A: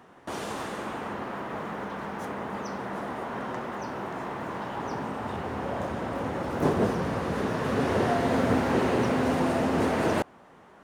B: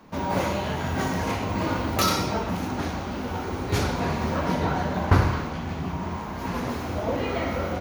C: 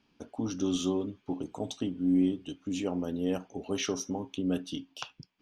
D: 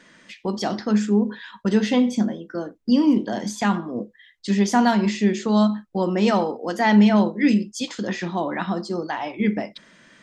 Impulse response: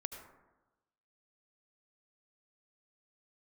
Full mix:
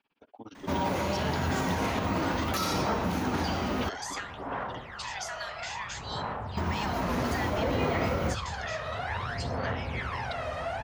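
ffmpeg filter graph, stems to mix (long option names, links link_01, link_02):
-filter_complex "[0:a]asubboost=boost=11:cutoff=94,aphaser=in_gain=1:out_gain=1:delay=1.6:decay=0.74:speed=0.59:type=sinusoidal,adelay=1200,volume=-5.5dB[link_01];[1:a]bandreject=frequency=50:width_type=h:width=6,bandreject=frequency=100:width_type=h:width=6,adelay=550,volume=0.5dB,asplit=3[link_02][link_03][link_04];[link_02]atrim=end=3.89,asetpts=PTS-STARTPTS,afade=type=out:start_time=3.886:duration=0.004:curve=hsin[link_05];[link_03]atrim=start=3.89:end=6.57,asetpts=PTS-STARTPTS,volume=0[link_06];[link_04]atrim=start=6.57,asetpts=PTS-STARTPTS,afade=type=in:duration=0.004:curve=hsin[link_07];[link_05][link_06][link_07]concat=n=3:v=0:a=1[link_08];[2:a]tremolo=f=17:d=0.99,lowpass=3700,volume=0dB[link_09];[3:a]highpass=frequency=1500:width=0.5412,highpass=frequency=1500:width=1.3066,acompressor=threshold=-34dB:ratio=6,adelay=550,volume=-2dB[link_10];[link_01][link_09]amix=inputs=2:normalize=0,acrossover=split=460 4800:gain=0.2 1 0.178[link_11][link_12][link_13];[link_11][link_12][link_13]amix=inputs=3:normalize=0,acompressor=threshold=-29dB:ratio=6,volume=0dB[link_14];[link_08][link_10]amix=inputs=2:normalize=0,alimiter=limit=-20dB:level=0:latency=1:release=89,volume=0dB[link_15];[link_14][link_15]amix=inputs=2:normalize=0"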